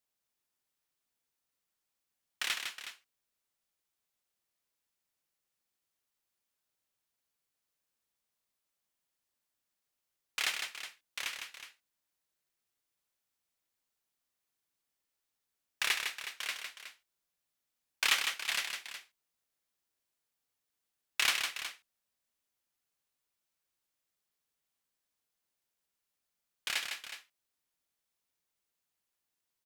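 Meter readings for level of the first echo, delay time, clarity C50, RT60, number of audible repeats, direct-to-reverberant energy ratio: -6.0 dB, 0.156 s, none, none, 2, none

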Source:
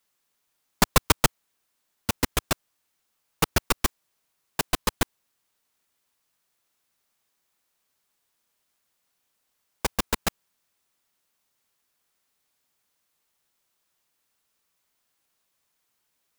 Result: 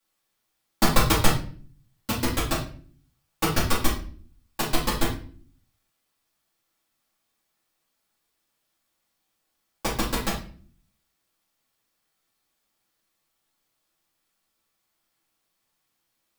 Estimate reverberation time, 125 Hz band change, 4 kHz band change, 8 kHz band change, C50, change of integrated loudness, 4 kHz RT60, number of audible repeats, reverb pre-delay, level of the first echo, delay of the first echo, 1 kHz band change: 0.45 s, +3.0 dB, +0.5 dB, -1.5 dB, 6.0 dB, +0.5 dB, 0.35 s, none, 3 ms, none, none, +1.0 dB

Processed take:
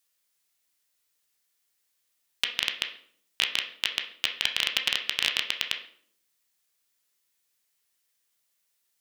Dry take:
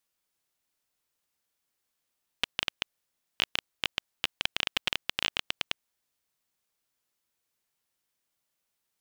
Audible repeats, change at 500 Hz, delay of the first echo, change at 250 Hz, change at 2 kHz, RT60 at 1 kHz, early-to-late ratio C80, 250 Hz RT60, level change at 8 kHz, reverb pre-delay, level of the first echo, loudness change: none, -1.0 dB, none, -3.0 dB, +4.0 dB, 0.55 s, 13.0 dB, 0.80 s, +6.5 dB, 14 ms, none, +4.5 dB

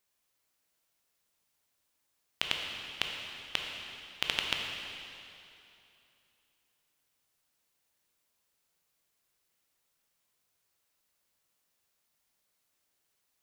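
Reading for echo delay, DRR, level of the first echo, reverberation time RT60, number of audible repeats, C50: none, 0.5 dB, none, 2.8 s, none, 1.5 dB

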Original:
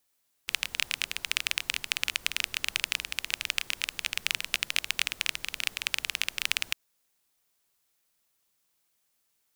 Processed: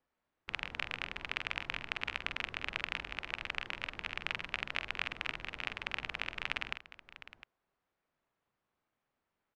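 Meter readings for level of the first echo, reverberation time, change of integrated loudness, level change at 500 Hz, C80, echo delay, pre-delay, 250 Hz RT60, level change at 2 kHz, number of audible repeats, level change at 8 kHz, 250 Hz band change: -8.5 dB, none, -8.5 dB, +2.0 dB, none, 46 ms, none, none, -6.0 dB, 2, -25.5 dB, +2.0 dB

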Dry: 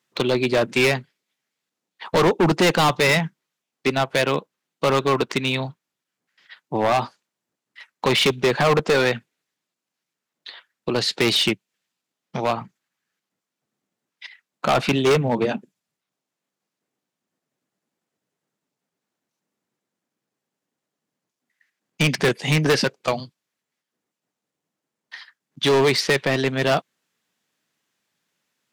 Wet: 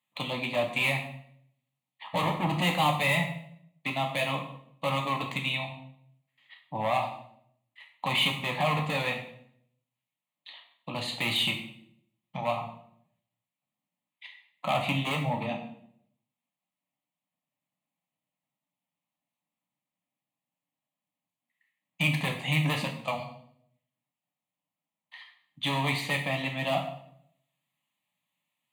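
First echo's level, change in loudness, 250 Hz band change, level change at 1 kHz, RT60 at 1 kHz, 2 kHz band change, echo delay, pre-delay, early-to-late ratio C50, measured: none, -8.5 dB, -10.0 dB, -6.0 dB, 0.60 s, -6.5 dB, none, 4 ms, 7.5 dB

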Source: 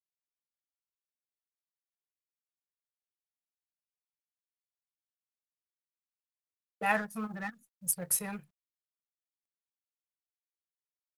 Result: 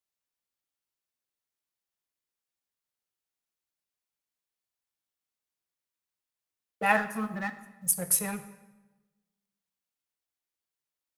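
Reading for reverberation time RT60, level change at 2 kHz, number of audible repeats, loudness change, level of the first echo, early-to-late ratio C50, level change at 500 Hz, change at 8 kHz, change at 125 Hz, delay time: 1.1 s, +5.0 dB, none, +5.0 dB, none, 13.0 dB, +5.0 dB, +5.0 dB, +4.5 dB, none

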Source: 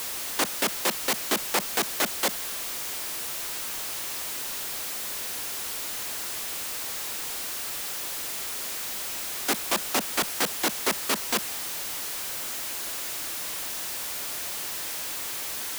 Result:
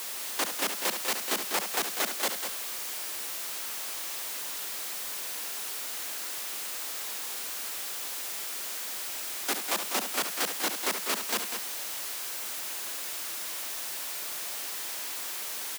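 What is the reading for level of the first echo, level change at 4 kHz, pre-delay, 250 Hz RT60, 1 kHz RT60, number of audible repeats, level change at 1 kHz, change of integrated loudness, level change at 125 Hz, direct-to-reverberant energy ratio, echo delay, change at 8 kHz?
-8.5 dB, -3.0 dB, none, none, none, 2, -3.0 dB, -3.0 dB, under -10 dB, none, 71 ms, -3.0 dB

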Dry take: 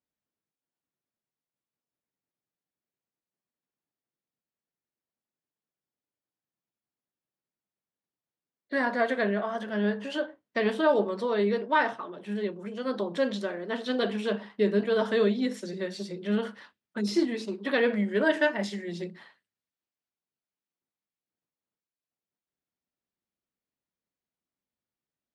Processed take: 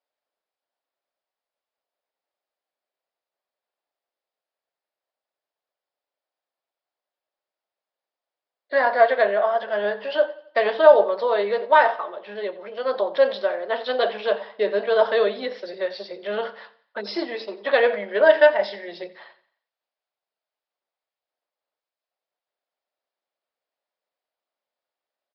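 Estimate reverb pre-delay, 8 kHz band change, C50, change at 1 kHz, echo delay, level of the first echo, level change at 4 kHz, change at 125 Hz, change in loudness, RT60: none, n/a, none, +9.5 dB, 88 ms, -18.5 dB, +5.0 dB, under -10 dB, +7.5 dB, none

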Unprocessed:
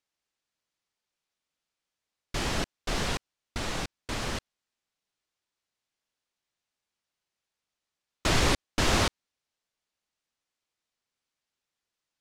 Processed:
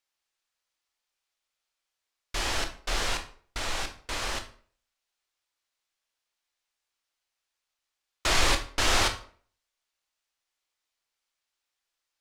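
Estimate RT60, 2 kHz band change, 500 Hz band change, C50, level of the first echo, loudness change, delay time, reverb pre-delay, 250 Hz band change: 0.50 s, +2.5 dB, -2.0 dB, 11.5 dB, none, +1.0 dB, none, 15 ms, -6.5 dB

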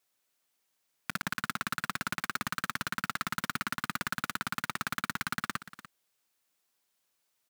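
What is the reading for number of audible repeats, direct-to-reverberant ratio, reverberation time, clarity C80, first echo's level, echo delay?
1, none, none, none, -15.0 dB, 0.294 s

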